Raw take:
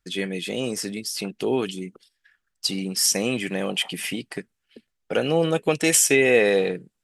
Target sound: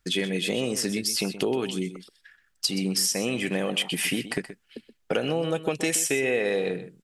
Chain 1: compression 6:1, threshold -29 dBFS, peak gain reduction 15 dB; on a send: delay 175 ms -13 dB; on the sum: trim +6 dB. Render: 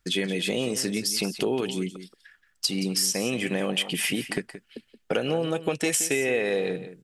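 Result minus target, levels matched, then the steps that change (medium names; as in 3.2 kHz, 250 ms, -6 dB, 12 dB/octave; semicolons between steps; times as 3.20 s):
echo 49 ms late
change: delay 126 ms -13 dB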